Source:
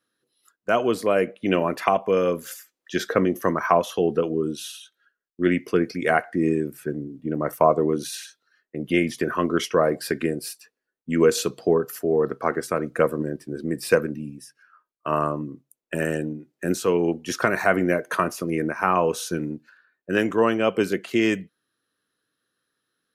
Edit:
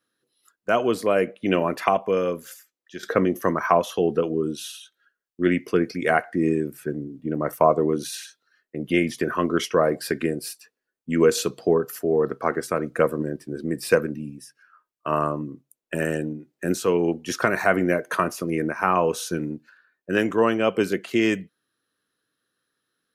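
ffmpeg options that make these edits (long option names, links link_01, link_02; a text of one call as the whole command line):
ffmpeg -i in.wav -filter_complex "[0:a]asplit=2[link_01][link_02];[link_01]atrim=end=3.03,asetpts=PTS-STARTPTS,afade=type=out:start_time=1.9:duration=1.13:silence=0.211349[link_03];[link_02]atrim=start=3.03,asetpts=PTS-STARTPTS,afade=type=in:duration=0.004:curve=hsin:silence=0.211349[link_04];[link_03][link_04]concat=n=2:v=0:a=1" out.wav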